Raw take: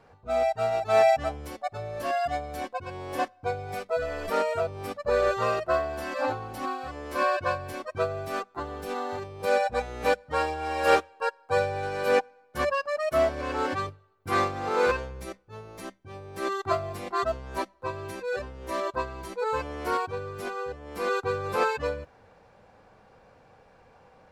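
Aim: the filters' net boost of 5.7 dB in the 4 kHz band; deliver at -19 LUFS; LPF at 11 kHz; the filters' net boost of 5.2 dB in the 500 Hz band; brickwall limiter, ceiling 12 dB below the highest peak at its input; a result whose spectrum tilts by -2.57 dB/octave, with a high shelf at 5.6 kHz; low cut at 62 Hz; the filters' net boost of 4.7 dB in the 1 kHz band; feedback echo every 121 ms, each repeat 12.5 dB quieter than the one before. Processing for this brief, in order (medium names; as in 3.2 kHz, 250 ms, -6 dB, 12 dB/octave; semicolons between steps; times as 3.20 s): high-pass 62 Hz; low-pass 11 kHz; peaking EQ 500 Hz +5 dB; peaking EQ 1 kHz +4 dB; peaking EQ 4 kHz +3.5 dB; treble shelf 5.6 kHz +8.5 dB; peak limiter -13.5 dBFS; feedback delay 121 ms, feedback 24%, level -12.5 dB; trim +7 dB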